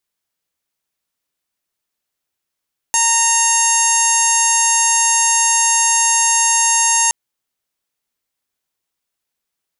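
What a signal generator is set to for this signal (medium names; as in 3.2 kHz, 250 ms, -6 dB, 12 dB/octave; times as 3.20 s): steady additive tone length 4.17 s, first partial 923 Hz, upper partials -6.5/-6/-14.5/-12/-11/3/-0.5/-8/-15.5/-2/-13 dB, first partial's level -18.5 dB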